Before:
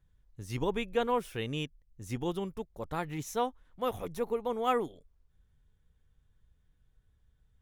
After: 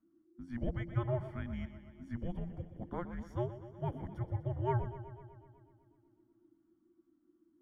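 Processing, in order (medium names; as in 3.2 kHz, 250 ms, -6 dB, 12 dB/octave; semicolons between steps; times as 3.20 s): frequency shift -360 Hz; Savitzky-Golay filter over 41 samples; modulated delay 124 ms, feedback 67%, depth 51 cents, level -13 dB; trim -4.5 dB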